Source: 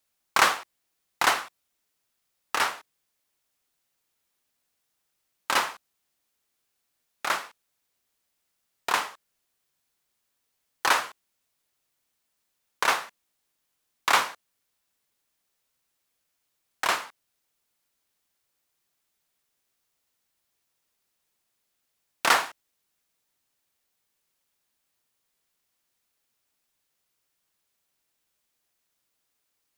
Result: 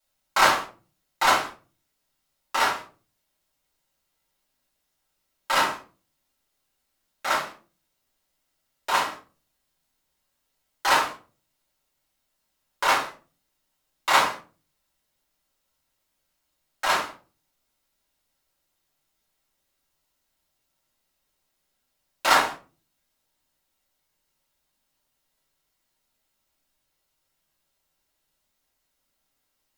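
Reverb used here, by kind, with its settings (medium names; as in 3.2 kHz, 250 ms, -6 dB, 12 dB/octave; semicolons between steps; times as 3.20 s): simulated room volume 180 m³, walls furnished, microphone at 5.2 m; trim -7.5 dB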